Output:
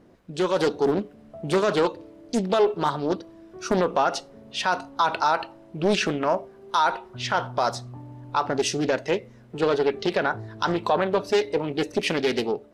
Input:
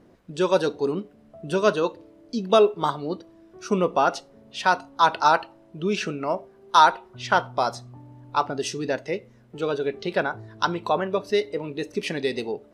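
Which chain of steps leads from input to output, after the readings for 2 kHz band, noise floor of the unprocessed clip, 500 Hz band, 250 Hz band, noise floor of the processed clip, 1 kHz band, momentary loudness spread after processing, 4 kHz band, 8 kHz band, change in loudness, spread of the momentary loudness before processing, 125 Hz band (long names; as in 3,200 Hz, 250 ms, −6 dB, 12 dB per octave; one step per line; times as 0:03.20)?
−1.0 dB, −54 dBFS, +0.5 dB, +2.0 dB, −50 dBFS, −2.5 dB, 11 LU, +0.5 dB, +2.5 dB, −0.5 dB, 14 LU, +1.5 dB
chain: brickwall limiter −16 dBFS, peak gain reduction 11.5 dB
automatic gain control gain up to 4.5 dB
highs frequency-modulated by the lows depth 0.59 ms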